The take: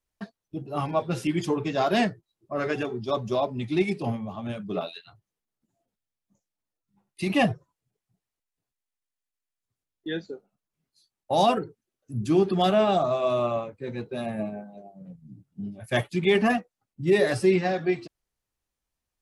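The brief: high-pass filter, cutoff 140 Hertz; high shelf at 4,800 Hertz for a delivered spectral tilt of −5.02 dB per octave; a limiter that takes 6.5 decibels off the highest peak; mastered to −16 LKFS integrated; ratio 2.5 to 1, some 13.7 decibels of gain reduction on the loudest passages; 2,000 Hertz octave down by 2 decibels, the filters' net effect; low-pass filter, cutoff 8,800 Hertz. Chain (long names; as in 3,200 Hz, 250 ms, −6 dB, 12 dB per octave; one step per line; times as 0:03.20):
high-pass filter 140 Hz
low-pass filter 8,800 Hz
parametric band 2,000 Hz −3.5 dB
high-shelf EQ 4,800 Hz +6 dB
downward compressor 2.5 to 1, threshold −38 dBFS
level +24 dB
brickwall limiter −5.5 dBFS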